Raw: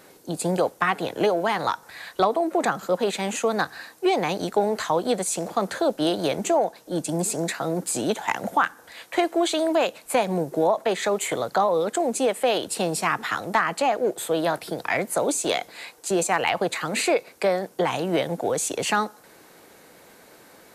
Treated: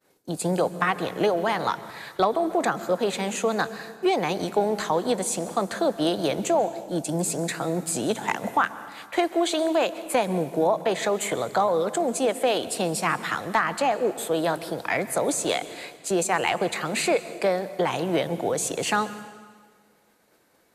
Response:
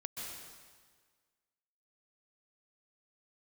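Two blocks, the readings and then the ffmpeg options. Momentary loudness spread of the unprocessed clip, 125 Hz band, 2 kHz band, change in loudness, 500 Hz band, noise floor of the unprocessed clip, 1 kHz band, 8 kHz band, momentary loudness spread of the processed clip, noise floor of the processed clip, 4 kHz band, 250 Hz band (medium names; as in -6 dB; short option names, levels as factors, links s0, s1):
5 LU, +0.5 dB, -1.0 dB, -1.0 dB, -1.0 dB, -52 dBFS, -1.0 dB, -1.0 dB, 5 LU, -61 dBFS, -1.0 dB, -0.5 dB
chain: -filter_complex "[0:a]agate=range=0.0224:threshold=0.00891:ratio=3:detection=peak,asplit=2[s0][s1];[1:a]atrim=start_sample=2205,lowshelf=f=250:g=9[s2];[s1][s2]afir=irnorm=-1:irlink=0,volume=0.266[s3];[s0][s3]amix=inputs=2:normalize=0,volume=0.75"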